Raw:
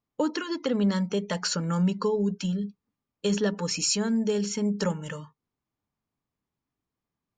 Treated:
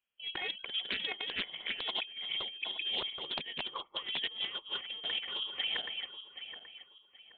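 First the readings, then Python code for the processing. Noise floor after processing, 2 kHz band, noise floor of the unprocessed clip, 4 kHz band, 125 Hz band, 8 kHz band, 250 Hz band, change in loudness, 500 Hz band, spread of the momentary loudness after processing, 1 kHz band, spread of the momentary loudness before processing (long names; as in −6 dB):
−64 dBFS, +0.5 dB, below −85 dBFS, +3.5 dB, −31.0 dB, below −40 dB, −28.5 dB, −8.5 dB, −20.0 dB, 11 LU, −8.5 dB, 7 LU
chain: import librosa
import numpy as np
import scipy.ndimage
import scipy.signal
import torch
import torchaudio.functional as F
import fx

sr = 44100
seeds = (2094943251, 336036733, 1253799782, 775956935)

y = fx.reverse_delay_fb(x, sr, ms=388, feedback_pct=51, wet_db=-0.5)
y = scipy.signal.sosfilt(scipy.signal.butter(4, 350.0, 'highpass', fs=sr, output='sos'), y)
y = fx.over_compress(y, sr, threshold_db=-33.0, ratio=-0.5)
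y = fx.freq_invert(y, sr, carrier_hz=3600)
y = fx.doppler_dist(y, sr, depth_ms=0.22)
y = F.gain(torch.from_numpy(y), -3.5).numpy()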